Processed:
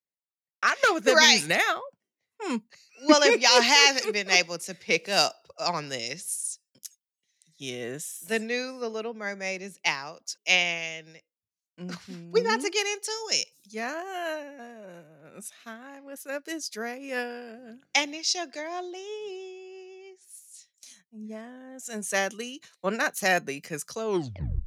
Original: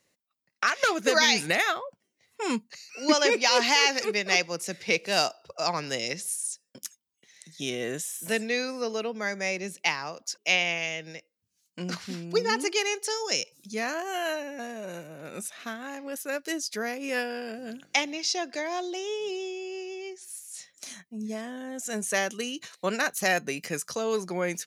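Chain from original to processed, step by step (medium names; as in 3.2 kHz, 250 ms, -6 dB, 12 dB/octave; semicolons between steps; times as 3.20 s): tape stop on the ending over 0.60 s; three bands expanded up and down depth 70%; trim -1 dB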